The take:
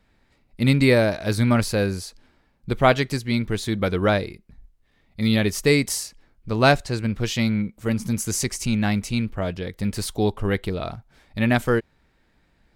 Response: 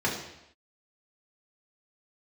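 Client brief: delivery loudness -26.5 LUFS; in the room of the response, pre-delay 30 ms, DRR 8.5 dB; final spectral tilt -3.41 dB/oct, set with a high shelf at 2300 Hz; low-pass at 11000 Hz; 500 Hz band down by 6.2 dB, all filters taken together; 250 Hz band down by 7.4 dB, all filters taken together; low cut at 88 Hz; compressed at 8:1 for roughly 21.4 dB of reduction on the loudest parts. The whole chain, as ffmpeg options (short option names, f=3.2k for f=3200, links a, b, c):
-filter_complex "[0:a]highpass=88,lowpass=11k,equalizer=f=250:t=o:g=-7.5,equalizer=f=500:t=o:g=-6.5,highshelf=f=2.3k:g=9,acompressor=threshold=-34dB:ratio=8,asplit=2[a][b];[1:a]atrim=start_sample=2205,adelay=30[c];[b][c]afir=irnorm=-1:irlink=0,volume=-20dB[d];[a][d]amix=inputs=2:normalize=0,volume=10dB"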